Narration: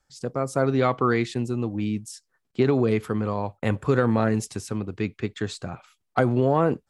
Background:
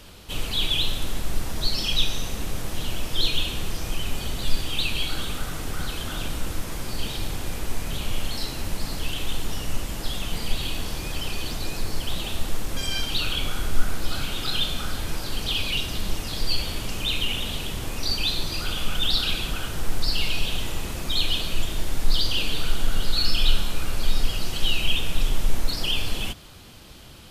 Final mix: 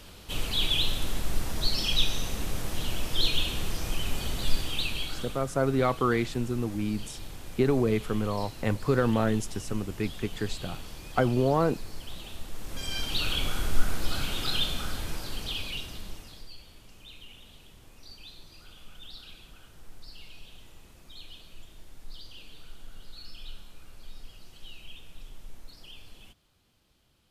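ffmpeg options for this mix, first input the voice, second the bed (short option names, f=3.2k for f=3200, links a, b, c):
-filter_complex "[0:a]adelay=5000,volume=-3.5dB[a];[1:a]volume=7.5dB,afade=t=out:st=4.49:d=0.97:silence=0.316228,afade=t=in:st=12.52:d=0.79:silence=0.316228,afade=t=out:st=14.47:d=2.04:silence=0.0944061[b];[a][b]amix=inputs=2:normalize=0"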